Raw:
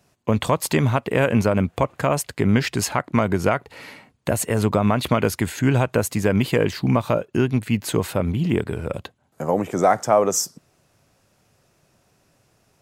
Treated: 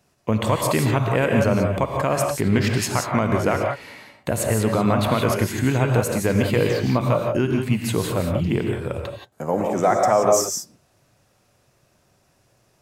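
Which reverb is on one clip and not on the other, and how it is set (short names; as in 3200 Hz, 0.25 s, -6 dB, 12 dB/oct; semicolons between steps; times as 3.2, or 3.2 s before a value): non-linear reverb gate 0.2 s rising, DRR 1.5 dB; gain -2 dB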